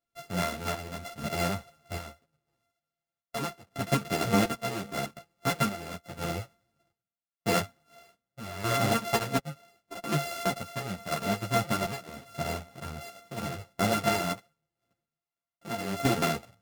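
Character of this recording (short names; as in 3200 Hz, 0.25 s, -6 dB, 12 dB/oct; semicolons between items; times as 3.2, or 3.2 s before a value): a buzz of ramps at a fixed pitch in blocks of 64 samples; chopped level 0.81 Hz, depth 60%, duty 60%; a shimmering, thickened sound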